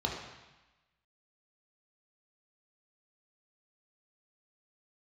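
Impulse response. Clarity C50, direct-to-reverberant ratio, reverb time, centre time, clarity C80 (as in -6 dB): 3.0 dB, -1.5 dB, 1.1 s, 51 ms, 5.0 dB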